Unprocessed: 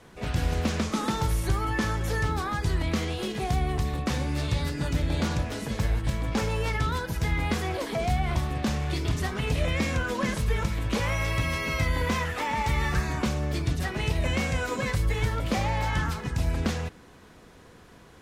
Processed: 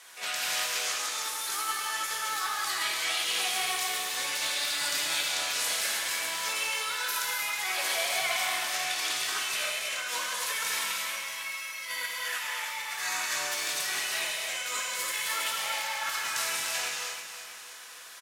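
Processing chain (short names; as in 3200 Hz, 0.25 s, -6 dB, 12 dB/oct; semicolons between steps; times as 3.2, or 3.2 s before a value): HPF 1300 Hz 12 dB/oct; high shelf 4600 Hz +11.5 dB; negative-ratio compressor -36 dBFS, ratio -0.5; feedback echo 0.319 s, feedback 51%, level -10 dB; non-linear reverb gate 0.35 s flat, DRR -3 dB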